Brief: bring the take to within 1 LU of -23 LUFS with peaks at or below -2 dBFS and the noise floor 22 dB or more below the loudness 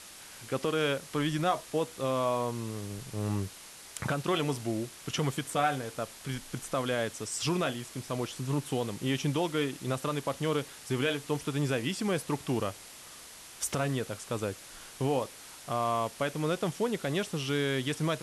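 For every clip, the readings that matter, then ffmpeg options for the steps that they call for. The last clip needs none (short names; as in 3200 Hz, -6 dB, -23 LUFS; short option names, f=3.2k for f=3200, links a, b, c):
noise floor -49 dBFS; noise floor target -54 dBFS; loudness -32.0 LUFS; peak -15.0 dBFS; loudness target -23.0 LUFS
-> -af "afftdn=nr=6:nf=-49"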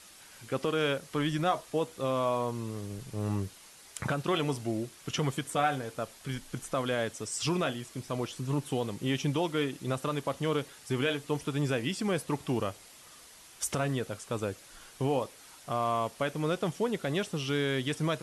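noise floor -54 dBFS; noise floor target -55 dBFS
-> -af "afftdn=nr=6:nf=-54"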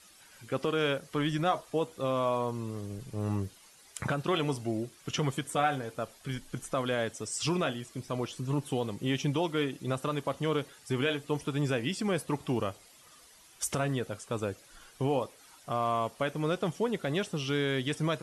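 noise floor -57 dBFS; loudness -32.5 LUFS; peak -15.0 dBFS; loudness target -23.0 LUFS
-> -af "volume=9.5dB"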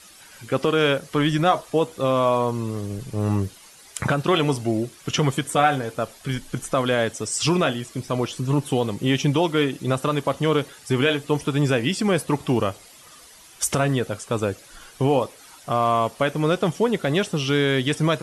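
loudness -23.0 LUFS; peak -5.5 dBFS; noise floor -48 dBFS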